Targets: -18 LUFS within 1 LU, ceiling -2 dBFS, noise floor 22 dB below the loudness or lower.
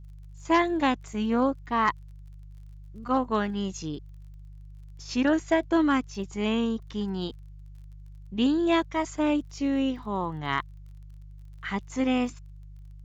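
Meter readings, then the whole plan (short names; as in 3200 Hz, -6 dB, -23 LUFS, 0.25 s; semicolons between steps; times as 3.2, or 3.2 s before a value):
ticks 37/s; hum 50 Hz; harmonics up to 150 Hz; hum level -42 dBFS; loudness -27.5 LUFS; peak -13.0 dBFS; loudness target -18.0 LUFS
-> de-click; de-hum 50 Hz, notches 3; gain +9.5 dB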